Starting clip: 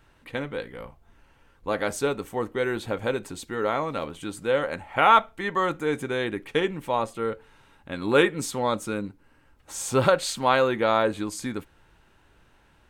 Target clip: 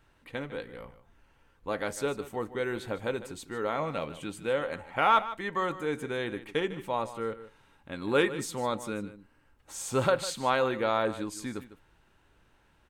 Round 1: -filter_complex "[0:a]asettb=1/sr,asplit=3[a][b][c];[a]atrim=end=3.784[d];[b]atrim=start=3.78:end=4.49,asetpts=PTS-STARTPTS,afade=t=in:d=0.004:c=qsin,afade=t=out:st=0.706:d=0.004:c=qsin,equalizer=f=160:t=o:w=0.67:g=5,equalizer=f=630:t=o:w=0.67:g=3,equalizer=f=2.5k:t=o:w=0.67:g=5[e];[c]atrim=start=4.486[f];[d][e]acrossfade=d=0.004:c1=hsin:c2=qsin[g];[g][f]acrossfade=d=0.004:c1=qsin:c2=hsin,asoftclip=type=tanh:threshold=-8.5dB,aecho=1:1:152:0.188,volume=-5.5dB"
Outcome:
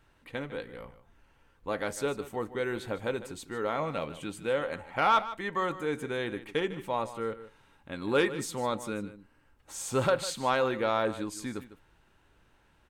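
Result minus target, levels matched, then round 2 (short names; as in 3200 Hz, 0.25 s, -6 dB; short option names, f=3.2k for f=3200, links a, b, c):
soft clip: distortion +12 dB
-filter_complex "[0:a]asettb=1/sr,asplit=3[a][b][c];[a]atrim=end=3.784[d];[b]atrim=start=3.78:end=4.49,asetpts=PTS-STARTPTS,afade=t=in:d=0.004:c=qsin,afade=t=out:st=0.706:d=0.004:c=qsin,equalizer=f=160:t=o:w=0.67:g=5,equalizer=f=630:t=o:w=0.67:g=3,equalizer=f=2.5k:t=o:w=0.67:g=5[e];[c]atrim=start=4.486[f];[d][e]acrossfade=d=0.004:c1=hsin:c2=qsin[g];[g][f]acrossfade=d=0.004:c1=qsin:c2=hsin,asoftclip=type=tanh:threshold=-1.5dB,aecho=1:1:152:0.188,volume=-5.5dB"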